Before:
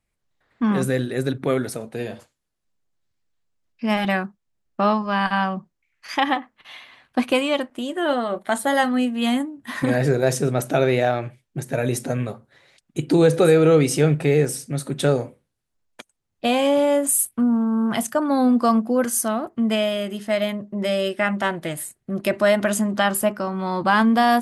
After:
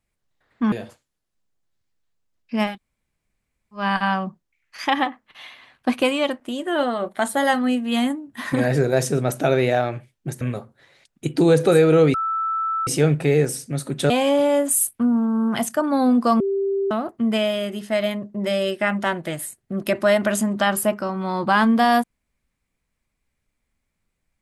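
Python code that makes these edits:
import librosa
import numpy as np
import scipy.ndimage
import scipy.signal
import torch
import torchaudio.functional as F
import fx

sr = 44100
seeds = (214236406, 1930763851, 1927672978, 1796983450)

y = fx.edit(x, sr, fx.cut(start_s=0.72, length_s=1.3),
    fx.room_tone_fill(start_s=4.0, length_s=1.09, crossfade_s=0.16),
    fx.cut(start_s=11.71, length_s=0.43),
    fx.insert_tone(at_s=13.87, length_s=0.73, hz=1320.0, db=-20.5),
    fx.cut(start_s=15.1, length_s=1.38),
    fx.bleep(start_s=18.78, length_s=0.51, hz=393.0, db=-19.0), tone=tone)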